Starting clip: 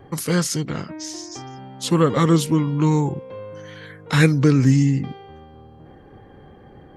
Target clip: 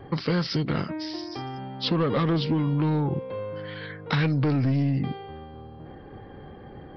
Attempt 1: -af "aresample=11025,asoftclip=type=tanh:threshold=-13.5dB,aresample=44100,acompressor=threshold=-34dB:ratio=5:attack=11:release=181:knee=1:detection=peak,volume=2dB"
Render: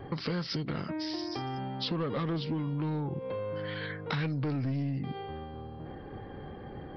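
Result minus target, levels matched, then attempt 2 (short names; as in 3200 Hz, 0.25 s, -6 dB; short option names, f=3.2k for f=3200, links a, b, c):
compressor: peak gain reduction +8.5 dB
-af "aresample=11025,asoftclip=type=tanh:threshold=-13.5dB,aresample=44100,acompressor=threshold=-23.5dB:ratio=5:attack=11:release=181:knee=1:detection=peak,volume=2dB"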